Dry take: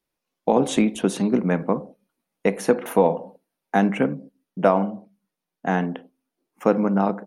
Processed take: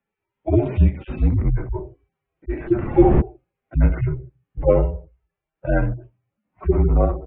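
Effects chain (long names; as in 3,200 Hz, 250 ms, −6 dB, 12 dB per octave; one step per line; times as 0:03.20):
harmonic-percussive split with one part muted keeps harmonic
0:02.59–0:03.20: wind on the microphone 180 Hz −25 dBFS
single-sideband voice off tune −140 Hz 170–2,900 Hz
level +6.5 dB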